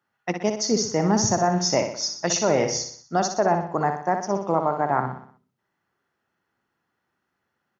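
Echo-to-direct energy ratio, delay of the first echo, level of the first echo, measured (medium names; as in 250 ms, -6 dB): -6.0 dB, 61 ms, -7.0 dB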